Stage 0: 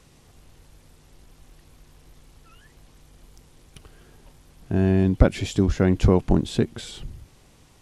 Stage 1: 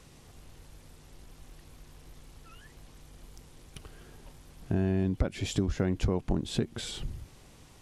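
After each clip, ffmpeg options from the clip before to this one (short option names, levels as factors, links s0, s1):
-af "acompressor=threshold=0.0501:ratio=4"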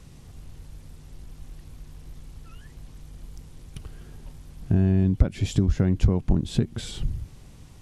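-af "bass=f=250:g=10,treble=f=4000:g=1"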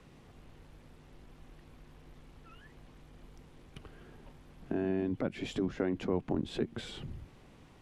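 -filter_complex "[0:a]afftfilt=real='re*lt(hypot(re,im),0.708)':imag='im*lt(hypot(re,im),0.708)':win_size=1024:overlap=0.75,acrossover=split=210 3300:gain=0.224 1 0.2[s0][s1][s2];[s0][s1][s2]amix=inputs=3:normalize=0,volume=0.841"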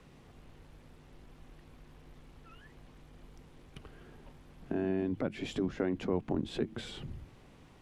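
-af "bandreject=f=107.9:t=h:w=4,bandreject=f=215.8:t=h:w=4,bandreject=f=323.7:t=h:w=4"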